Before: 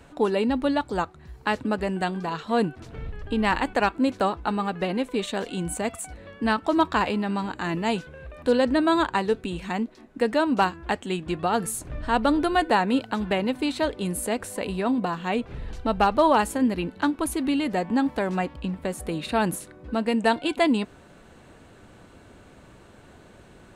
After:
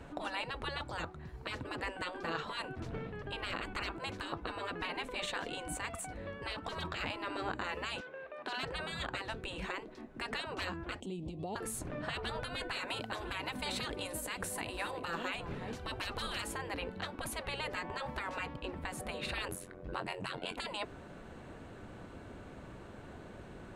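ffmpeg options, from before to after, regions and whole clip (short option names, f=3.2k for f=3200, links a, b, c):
-filter_complex "[0:a]asettb=1/sr,asplit=3[a][b][c];[a]atrim=end=8.004[d];[b]atrim=start=8:end=8.64,asetpts=PTS-STARTPTS,afade=t=in:d=0.004:c=qsin,afade=t=out:st=0.636:d=0.004:c=qsin,highpass=490,adynamicsmooth=sensitivity=4:basefreq=5.1k[e];[c]atrim=start=8.636[f];[d][e]acrossfade=d=0.004:c1=hsin:c2=qsin[g];[g][f]acrossfade=d=0.004:c1=qsin:c2=hsin,asettb=1/sr,asplit=3[h][i][j];[h]atrim=end=11.004[k];[i]atrim=start=11:end=11.56,asetpts=PTS-STARTPTS,afade=t=in:d=0.004:c=qsin,afade=t=out:st=0.556:d=0.004:c=qsin,asuperstop=centerf=1500:order=4:qfactor=0.63,acompressor=threshold=-36dB:ratio=16:attack=3.2:release=140:knee=1:detection=peak[l];[j]atrim=start=11.556[m];[k][l]acrossfade=d=0.004:c1=hsin:c2=qsin[n];[n][m]acrossfade=d=0.004:c1=qsin:c2=hsin,asettb=1/sr,asplit=3[o][p][q];[o]atrim=end=12.754[r];[p]atrim=start=12.75:end=16.42,asetpts=PTS-STARTPTS,afade=t=in:d=0.004:c=qsin,afade=t=out:st=3.666:d=0.004:c=qsin,highshelf=f=6.9k:g=10,aecho=1:1:348:0.0841,atrim=end_sample=161847[s];[q]atrim=start=16.416[t];[r][s]acrossfade=d=0.004:c1=hsin:c2=qsin[u];[u][t]acrossfade=d=0.004:c1=qsin:c2=hsin,asettb=1/sr,asplit=3[v][w][x];[v]atrim=end=19.484[y];[w]atrim=start=19.48:end=20.55,asetpts=PTS-STARTPTS,afade=t=in:d=0.004:c=qsin,afade=t=out:st=1.066:d=0.004:c=qsin,highshelf=f=9.6k:g=5,tremolo=f=90:d=0.947,asplit=2[z][aa];[aa]adelay=22,volume=-11.5dB[ab];[z][ab]amix=inputs=2:normalize=0,atrim=end_sample=47187[ac];[x]atrim=start=20.546[ad];[y][ac]acrossfade=d=0.004:c1=hsin:c2=qsin[ae];[ae][ad]acrossfade=d=0.004:c1=qsin:c2=hsin,afftfilt=real='re*lt(hypot(re,im),0.112)':imag='im*lt(hypot(re,im),0.112)':win_size=1024:overlap=0.75,alimiter=limit=-23.5dB:level=0:latency=1:release=169,highshelf=f=3.5k:g=-9.5,volume=1dB"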